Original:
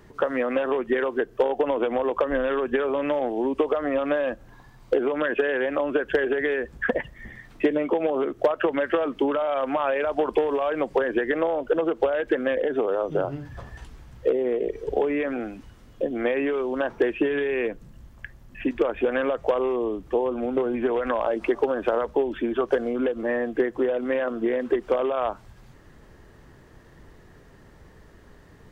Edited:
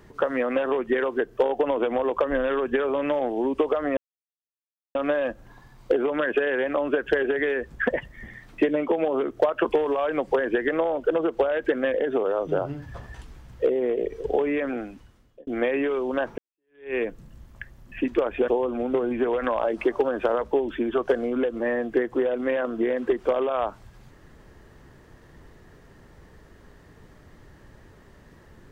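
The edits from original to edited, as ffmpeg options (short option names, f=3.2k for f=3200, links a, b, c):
-filter_complex "[0:a]asplit=6[a][b][c][d][e][f];[a]atrim=end=3.97,asetpts=PTS-STARTPTS,afade=t=out:st=3.966:d=0.004:c=hsin,apad=pad_dur=0.98[g];[b]atrim=start=3.97:end=8.672,asetpts=PTS-STARTPTS,afade=t=in:d=0.004:c=hsin[h];[c]atrim=start=10.278:end=16.1,asetpts=PTS-STARTPTS,afade=t=out:st=5.082:d=0.74[i];[d]atrim=start=16.1:end=17.01,asetpts=PTS-STARTPTS,afade=t=in:d=0.004:c=hsin,afade=t=out:st=0.906:d=0.004:c=hsin[j];[e]atrim=start=17.01:end=19.112,asetpts=PTS-STARTPTS,afade=t=in:d=0.56:c=exp[k];[f]atrim=start=20.108[l];[g][h]concat=n=2:v=0:a=1[m];[i][j][k]concat=n=3:v=0:a=1[n];[m][n]acrossfade=d=0.004:c1=hsin:c2=hsin[o];[o][l]acrossfade=d=0.004:c1=hsin:c2=hsin"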